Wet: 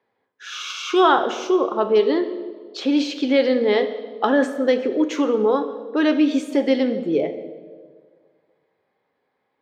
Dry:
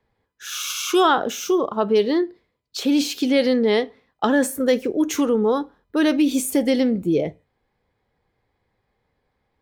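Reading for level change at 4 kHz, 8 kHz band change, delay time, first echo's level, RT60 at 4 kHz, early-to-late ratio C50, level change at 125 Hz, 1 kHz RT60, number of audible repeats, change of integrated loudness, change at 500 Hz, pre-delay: -1.5 dB, under -10 dB, none, none, 1.2 s, 11.0 dB, n/a, 1.5 s, none, +0.5 dB, +1.5 dB, 5 ms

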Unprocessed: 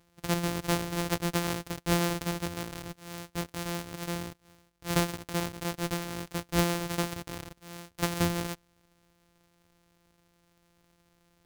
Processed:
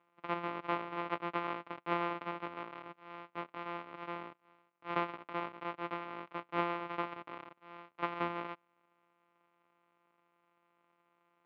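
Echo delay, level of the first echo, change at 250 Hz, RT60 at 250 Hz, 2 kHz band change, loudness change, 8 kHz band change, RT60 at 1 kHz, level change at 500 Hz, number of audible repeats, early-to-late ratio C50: none, none, -11.5 dB, none, -5.5 dB, -7.5 dB, under -40 dB, none, -6.5 dB, none, none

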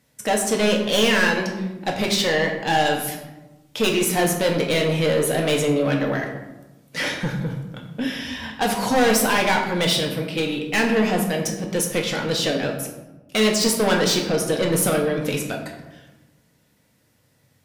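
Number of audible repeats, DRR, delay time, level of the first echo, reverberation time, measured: none, 0.5 dB, none, none, 1.1 s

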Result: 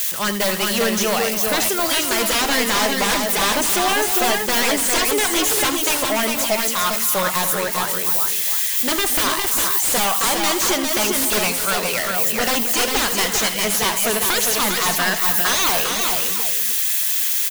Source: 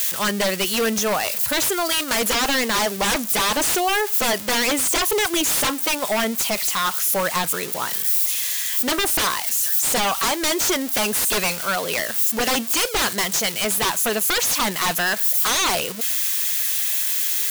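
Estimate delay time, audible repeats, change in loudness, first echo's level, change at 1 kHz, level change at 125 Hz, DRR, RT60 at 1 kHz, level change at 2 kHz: 78 ms, 4, +2.0 dB, -12.0 dB, +2.5 dB, +2.5 dB, none, none, +2.0 dB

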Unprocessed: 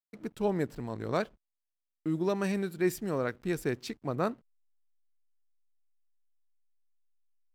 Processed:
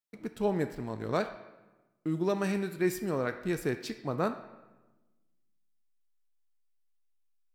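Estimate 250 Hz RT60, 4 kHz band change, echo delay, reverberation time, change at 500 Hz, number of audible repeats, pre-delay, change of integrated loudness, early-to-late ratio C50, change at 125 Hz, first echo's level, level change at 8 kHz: 1.5 s, +0.5 dB, none, 1.1 s, +0.5 dB, none, 5 ms, 0.0 dB, 10.5 dB, 0.0 dB, none, 0.0 dB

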